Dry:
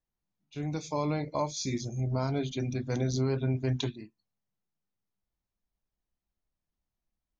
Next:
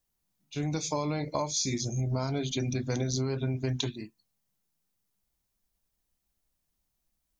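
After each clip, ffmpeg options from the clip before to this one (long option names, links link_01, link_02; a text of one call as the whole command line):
ffmpeg -i in.wav -af "highshelf=frequency=4800:gain=11,acompressor=threshold=-31dB:ratio=6,volume=4.5dB" out.wav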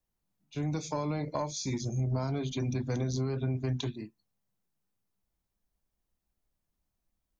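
ffmpeg -i in.wav -filter_complex "[0:a]highshelf=frequency=2100:gain=-9,acrossover=split=220|710|3300[link_01][link_02][link_03][link_04];[link_02]asoftclip=type=tanh:threshold=-31.5dB[link_05];[link_01][link_05][link_03][link_04]amix=inputs=4:normalize=0" out.wav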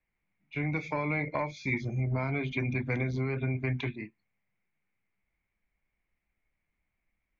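ffmpeg -i in.wav -af "lowpass=frequency=2200:width_type=q:width=9.8" out.wav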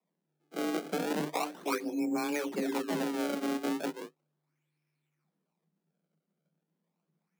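ffmpeg -i in.wav -af "acrusher=samples=30:mix=1:aa=0.000001:lfo=1:lforange=48:lforate=0.36,afreqshift=150,volume=-1.5dB" out.wav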